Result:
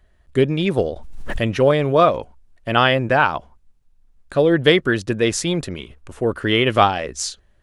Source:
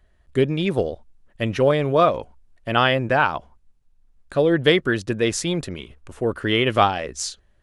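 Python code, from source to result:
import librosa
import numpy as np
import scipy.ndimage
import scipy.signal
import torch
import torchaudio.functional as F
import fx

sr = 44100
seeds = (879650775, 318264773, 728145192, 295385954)

y = fx.pre_swell(x, sr, db_per_s=35.0, at=(0.79, 1.5))
y = F.gain(torch.from_numpy(y), 2.5).numpy()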